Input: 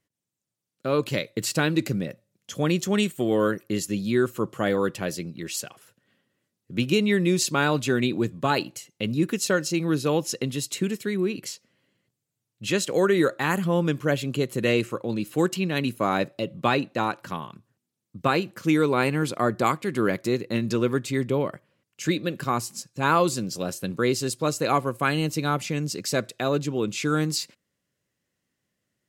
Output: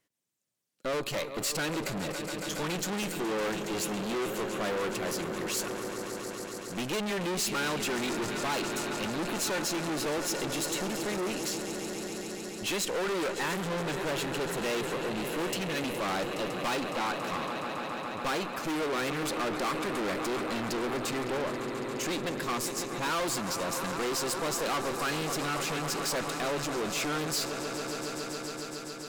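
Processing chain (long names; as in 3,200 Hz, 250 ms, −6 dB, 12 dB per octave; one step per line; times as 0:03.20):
echo that builds up and dies away 139 ms, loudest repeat 5, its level −17.5 dB
tube saturation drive 33 dB, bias 0.65
parametric band 69 Hz −10.5 dB 3 octaves
level +5.5 dB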